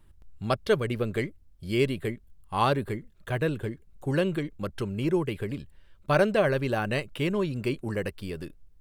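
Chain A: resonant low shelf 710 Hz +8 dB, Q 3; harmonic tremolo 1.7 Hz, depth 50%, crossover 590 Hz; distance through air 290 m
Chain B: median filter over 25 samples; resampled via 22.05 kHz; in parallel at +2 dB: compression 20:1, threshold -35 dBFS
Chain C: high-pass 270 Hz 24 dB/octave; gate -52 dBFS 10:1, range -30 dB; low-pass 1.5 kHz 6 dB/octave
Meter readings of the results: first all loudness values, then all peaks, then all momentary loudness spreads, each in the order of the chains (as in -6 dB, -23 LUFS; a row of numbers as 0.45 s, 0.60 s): -21.5 LUFS, -27.5 LUFS, -31.0 LUFS; -3.5 dBFS, -11.5 dBFS, -11.5 dBFS; 13 LU, 11 LU, 15 LU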